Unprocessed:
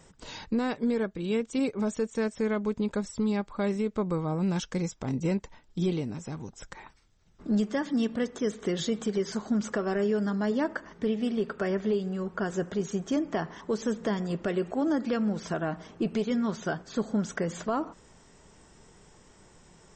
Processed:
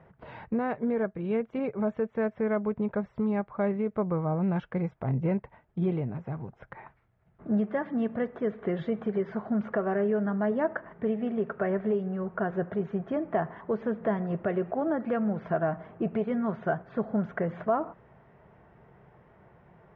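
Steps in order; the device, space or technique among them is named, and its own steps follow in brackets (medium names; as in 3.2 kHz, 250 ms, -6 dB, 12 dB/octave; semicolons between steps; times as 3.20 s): bass cabinet (cabinet simulation 61–2100 Hz, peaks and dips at 130 Hz +7 dB, 280 Hz -6 dB, 670 Hz +7 dB)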